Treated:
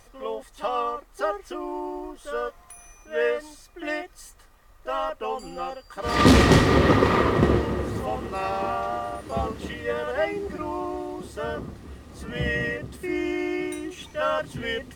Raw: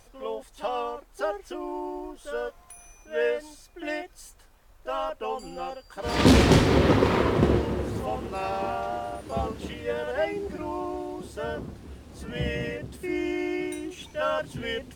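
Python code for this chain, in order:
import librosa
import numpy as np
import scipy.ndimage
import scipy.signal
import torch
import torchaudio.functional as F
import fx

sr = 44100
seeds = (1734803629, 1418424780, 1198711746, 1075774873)

y = fx.small_body(x, sr, hz=(1200.0, 1900.0), ring_ms=45, db=11)
y = y * 10.0 ** (1.5 / 20.0)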